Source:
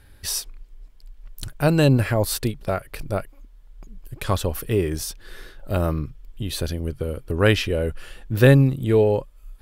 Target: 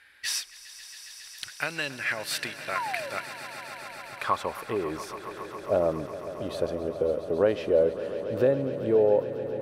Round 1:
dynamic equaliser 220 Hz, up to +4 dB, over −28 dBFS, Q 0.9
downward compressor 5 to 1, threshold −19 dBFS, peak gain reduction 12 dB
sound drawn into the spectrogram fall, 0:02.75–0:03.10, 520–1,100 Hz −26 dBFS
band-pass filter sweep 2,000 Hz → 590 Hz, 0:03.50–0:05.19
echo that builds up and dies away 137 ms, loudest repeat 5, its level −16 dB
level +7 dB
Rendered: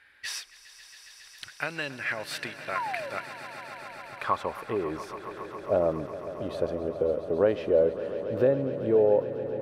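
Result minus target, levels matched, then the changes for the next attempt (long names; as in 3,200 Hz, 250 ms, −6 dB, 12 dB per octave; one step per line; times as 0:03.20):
8,000 Hz band −7.0 dB
add after downward compressor: high-shelf EQ 3,800 Hz +9.5 dB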